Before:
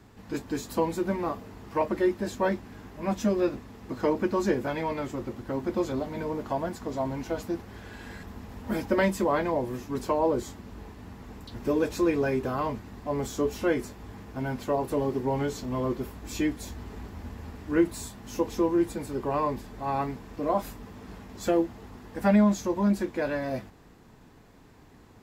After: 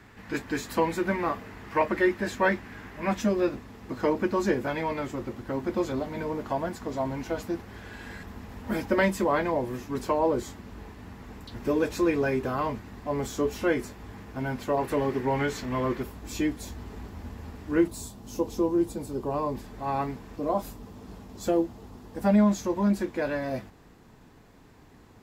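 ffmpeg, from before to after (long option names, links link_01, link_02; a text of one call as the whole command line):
ffmpeg -i in.wav -af "asetnsamples=nb_out_samples=441:pad=0,asendcmd='3.21 equalizer g 3;14.77 equalizer g 11;16.03 equalizer g -0.5;17.88 equalizer g -10;19.55 equalizer g 0;20.37 equalizer g -6.5;22.38 equalizer g 0.5',equalizer=frequency=1900:width_type=o:width=1.3:gain=10.5" out.wav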